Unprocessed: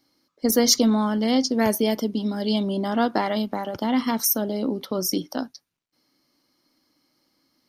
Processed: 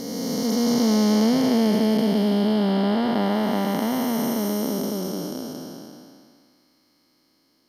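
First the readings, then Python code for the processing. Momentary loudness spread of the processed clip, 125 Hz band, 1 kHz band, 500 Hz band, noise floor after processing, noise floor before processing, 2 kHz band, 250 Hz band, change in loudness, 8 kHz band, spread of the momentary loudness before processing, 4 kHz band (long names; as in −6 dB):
12 LU, +5.0 dB, −0.5 dB, +1.0 dB, −65 dBFS, −76 dBFS, −1.0 dB, +3.0 dB, +1.0 dB, −7.0 dB, 10 LU, −3.0 dB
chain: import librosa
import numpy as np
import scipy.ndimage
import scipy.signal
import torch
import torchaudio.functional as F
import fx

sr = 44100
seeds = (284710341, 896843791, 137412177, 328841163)

y = fx.spec_blur(x, sr, span_ms=1070.0)
y = y * librosa.db_to_amplitude(6.0)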